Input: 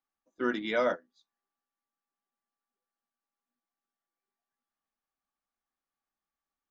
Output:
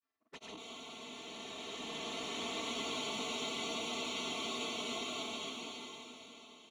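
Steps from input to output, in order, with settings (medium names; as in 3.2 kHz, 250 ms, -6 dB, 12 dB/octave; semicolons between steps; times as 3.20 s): comb filter that takes the minimum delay 2.9 ms; integer overflow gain 33.5 dB; comb 4.5 ms, depth 93%; reverse; compression 5:1, threshold -47 dBFS, peak gain reduction 13 dB; reverse; high-pass 85 Hz 24 dB/octave; distance through air 120 m; touch-sensitive flanger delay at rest 11.5 ms, full sweep at -51 dBFS; granulator, spray 100 ms, pitch spread up and down by 0 st; spectral freeze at 0.61 s, 2.90 s; swelling reverb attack 2100 ms, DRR -10 dB; trim +7 dB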